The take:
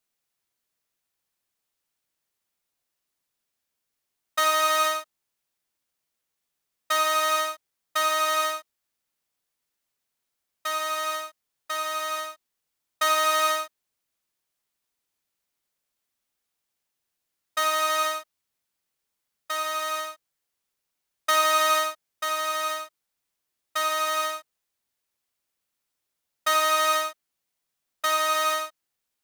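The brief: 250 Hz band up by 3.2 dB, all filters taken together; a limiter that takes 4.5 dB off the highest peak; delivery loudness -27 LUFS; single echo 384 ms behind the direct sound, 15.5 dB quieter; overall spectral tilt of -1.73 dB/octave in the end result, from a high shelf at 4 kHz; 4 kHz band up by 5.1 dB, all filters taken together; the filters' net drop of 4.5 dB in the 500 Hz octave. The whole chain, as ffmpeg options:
-af "equalizer=f=250:t=o:g=8.5,equalizer=f=500:t=o:g=-8,highshelf=f=4000:g=3.5,equalizer=f=4000:t=o:g=4,alimiter=limit=0.316:level=0:latency=1,aecho=1:1:384:0.168,volume=0.708"

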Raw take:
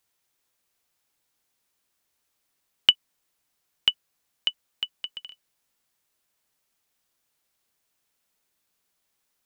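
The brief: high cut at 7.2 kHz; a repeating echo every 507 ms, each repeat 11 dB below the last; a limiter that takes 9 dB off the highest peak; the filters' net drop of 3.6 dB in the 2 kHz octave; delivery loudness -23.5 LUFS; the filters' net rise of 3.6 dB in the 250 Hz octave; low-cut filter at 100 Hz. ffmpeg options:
-af "highpass=100,lowpass=7200,equalizer=f=250:t=o:g=5,equalizer=f=2000:t=o:g=-5.5,alimiter=limit=0.211:level=0:latency=1,aecho=1:1:507|1014|1521:0.282|0.0789|0.0221,volume=3.98"

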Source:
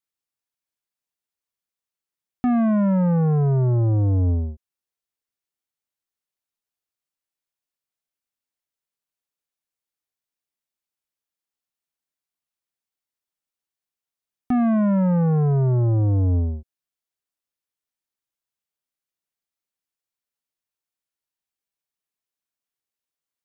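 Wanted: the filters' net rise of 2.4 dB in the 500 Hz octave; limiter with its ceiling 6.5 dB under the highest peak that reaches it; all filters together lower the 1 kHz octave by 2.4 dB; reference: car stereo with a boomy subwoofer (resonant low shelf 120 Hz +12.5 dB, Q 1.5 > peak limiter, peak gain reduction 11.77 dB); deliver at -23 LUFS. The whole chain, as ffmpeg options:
-af "equalizer=f=500:t=o:g=5.5,equalizer=f=1000:t=o:g=-6.5,alimiter=limit=0.0944:level=0:latency=1,lowshelf=f=120:t=q:w=1.5:g=12.5,volume=1.19,alimiter=limit=0.178:level=0:latency=1"

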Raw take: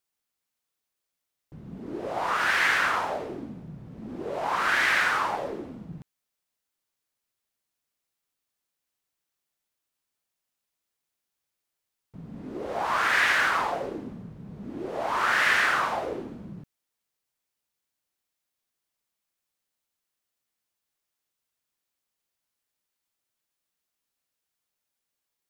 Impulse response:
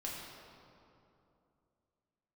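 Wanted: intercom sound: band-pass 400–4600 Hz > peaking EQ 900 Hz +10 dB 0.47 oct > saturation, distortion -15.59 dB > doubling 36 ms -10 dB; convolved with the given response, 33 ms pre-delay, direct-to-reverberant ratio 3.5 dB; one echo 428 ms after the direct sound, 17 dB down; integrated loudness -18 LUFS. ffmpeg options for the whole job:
-filter_complex "[0:a]aecho=1:1:428:0.141,asplit=2[s0][s1];[1:a]atrim=start_sample=2205,adelay=33[s2];[s1][s2]afir=irnorm=-1:irlink=0,volume=0.596[s3];[s0][s3]amix=inputs=2:normalize=0,highpass=400,lowpass=4600,equalizer=f=900:t=o:w=0.47:g=10,asoftclip=threshold=0.158,asplit=2[s4][s5];[s5]adelay=36,volume=0.316[s6];[s4][s6]amix=inputs=2:normalize=0,volume=1.88"

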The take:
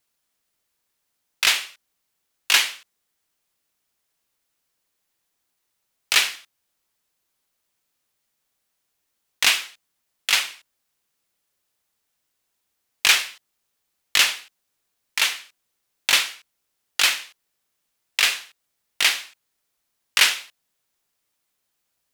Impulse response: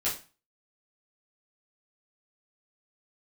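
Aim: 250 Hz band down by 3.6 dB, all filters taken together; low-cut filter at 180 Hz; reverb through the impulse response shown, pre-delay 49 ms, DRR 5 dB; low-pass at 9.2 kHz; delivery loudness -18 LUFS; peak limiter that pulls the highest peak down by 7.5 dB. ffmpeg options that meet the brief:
-filter_complex "[0:a]highpass=180,lowpass=9200,equalizer=f=250:t=o:g=-4,alimiter=limit=0.335:level=0:latency=1,asplit=2[s0][s1];[1:a]atrim=start_sample=2205,adelay=49[s2];[s1][s2]afir=irnorm=-1:irlink=0,volume=0.251[s3];[s0][s3]amix=inputs=2:normalize=0,volume=1.88"

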